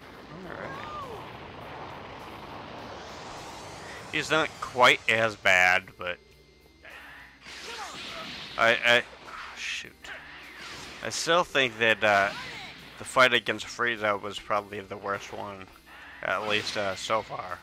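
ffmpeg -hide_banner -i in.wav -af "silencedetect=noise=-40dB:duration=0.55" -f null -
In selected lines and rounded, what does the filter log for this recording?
silence_start: 6.15
silence_end: 6.85 | silence_duration: 0.69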